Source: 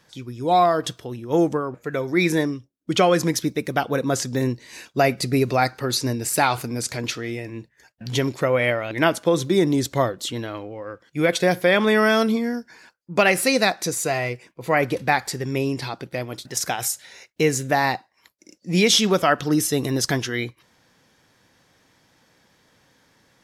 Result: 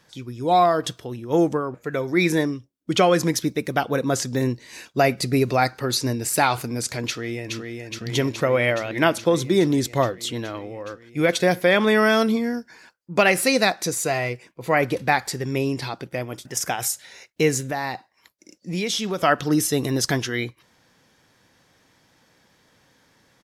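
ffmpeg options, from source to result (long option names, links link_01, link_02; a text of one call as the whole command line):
ffmpeg -i in.wav -filter_complex "[0:a]asplit=2[link_01][link_02];[link_02]afade=type=in:start_time=7.07:duration=0.01,afade=type=out:start_time=7.56:duration=0.01,aecho=0:1:420|840|1260|1680|2100|2520|2940|3360|3780|4200|4620|5040:0.595662|0.47653|0.381224|0.304979|0.243983|0.195187|0.156149|0.124919|0.0999355|0.0799484|0.0639587|0.051167[link_03];[link_01][link_03]amix=inputs=2:normalize=0,asettb=1/sr,asplit=3[link_04][link_05][link_06];[link_04]atrim=end=16.084[link_07];[link_05]atrim=start=16.08:end=16.82,asetpts=PTS-STARTPTS,afade=type=in:duration=0.004:curve=qsin,afade=type=out:start_time=0.736:duration=0.004:curve=qsin,equalizer=frequency=4100:width_type=o:width=0.22:gain=-14[link_08];[link_06]atrim=start=16.816[link_09];[link_07][link_08]acrossfade=duration=0.004:curve1=hsin:curve2=qsin[link_10];[link_10][link_09]acrossfade=duration=0.004:curve1=qsin:curve2=hsin,asettb=1/sr,asplit=3[link_11][link_12][link_13];[link_11]atrim=end=17.604[link_14];[link_12]atrim=start=17.6:end=19.22,asetpts=PTS-STARTPTS,afade=type=in:duration=0.004:curve=qsin,afade=type=out:start_time=1.616:duration=0.004:curve=qsin,acompressor=threshold=-28dB:ratio=2:attack=3.2:release=140:knee=1:detection=peak[link_15];[link_13]atrim=start=19.216[link_16];[link_14][link_15]acrossfade=duration=0.004:curve1=hsin:curve2=qsin[link_17];[link_17][link_16]acrossfade=duration=0.004:curve1=qsin:curve2=hsin" out.wav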